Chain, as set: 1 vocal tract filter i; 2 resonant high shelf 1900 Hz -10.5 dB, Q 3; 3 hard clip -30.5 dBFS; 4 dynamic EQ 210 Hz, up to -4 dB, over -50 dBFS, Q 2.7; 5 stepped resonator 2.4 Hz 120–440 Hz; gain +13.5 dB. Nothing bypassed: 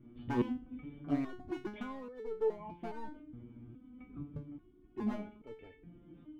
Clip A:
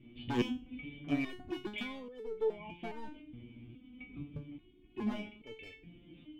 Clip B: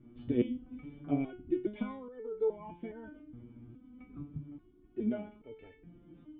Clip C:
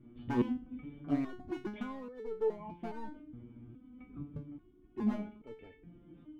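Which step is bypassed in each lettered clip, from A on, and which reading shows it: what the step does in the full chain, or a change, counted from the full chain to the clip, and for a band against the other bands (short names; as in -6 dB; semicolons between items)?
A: 2, 2 kHz band +7.0 dB; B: 3, distortion -8 dB; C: 4, loudness change +1.5 LU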